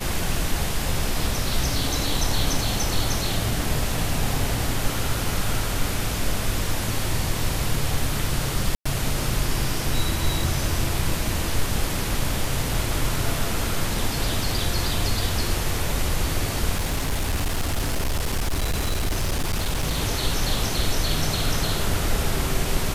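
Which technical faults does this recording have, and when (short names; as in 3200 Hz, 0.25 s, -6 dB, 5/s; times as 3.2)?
8.75–8.86 gap 0.105 s
16.77–19.97 clipped -19.5 dBFS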